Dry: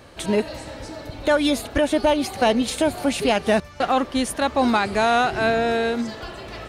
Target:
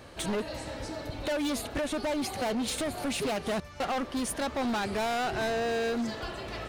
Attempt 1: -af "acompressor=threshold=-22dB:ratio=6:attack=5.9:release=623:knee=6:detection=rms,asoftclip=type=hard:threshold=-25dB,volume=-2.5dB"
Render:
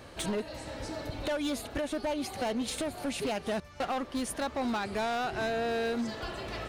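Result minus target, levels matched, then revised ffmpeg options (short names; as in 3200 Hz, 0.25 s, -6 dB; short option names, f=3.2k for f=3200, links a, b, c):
compressor: peak gain reduction +5.5 dB
-af "acompressor=threshold=-15dB:ratio=6:attack=5.9:release=623:knee=6:detection=rms,asoftclip=type=hard:threshold=-25dB,volume=-2.5dB"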